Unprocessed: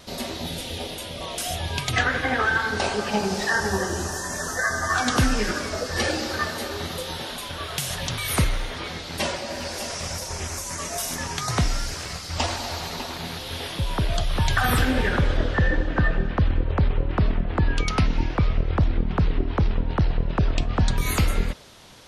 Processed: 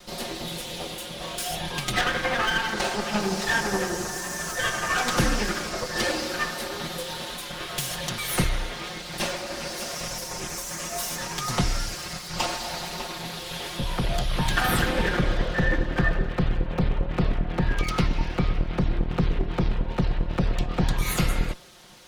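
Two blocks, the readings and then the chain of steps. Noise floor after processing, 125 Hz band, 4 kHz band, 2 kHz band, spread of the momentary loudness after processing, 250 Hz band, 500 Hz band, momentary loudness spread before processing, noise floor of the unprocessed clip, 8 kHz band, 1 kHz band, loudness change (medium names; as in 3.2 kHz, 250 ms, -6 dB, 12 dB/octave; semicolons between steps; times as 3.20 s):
-37 dBFS, -3.5 dB, -0.5 dB, -2.0 dB, 9 LU, -1.0 dB, -1.5 dB, 9 LU, -35 dBFS, -1.0 dB, -1.5 dB, -2.0 dB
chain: comb filter that takes the minimum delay 5.6 ms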